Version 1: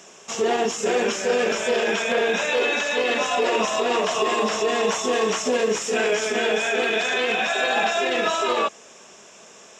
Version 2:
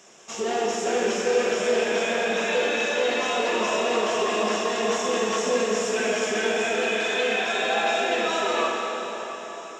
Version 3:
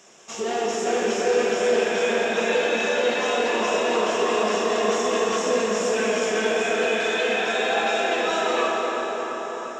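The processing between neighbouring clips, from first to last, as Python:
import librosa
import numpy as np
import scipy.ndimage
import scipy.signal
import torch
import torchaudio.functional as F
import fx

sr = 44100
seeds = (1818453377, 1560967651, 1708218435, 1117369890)

y1 = fx.rev_plate(x, sr, seeds[0], rt60_s=4.7, hf_ratio=0.8, predelay_ms=0, drr_db=-2.0)
y1 = F.gain(torch.from_numpy(y1), -6.0).numpy()
y2 = fx.echo_bbd(y1, sr, ms=344, stages=4096, feedback_pct=67, wet_db=-5.5)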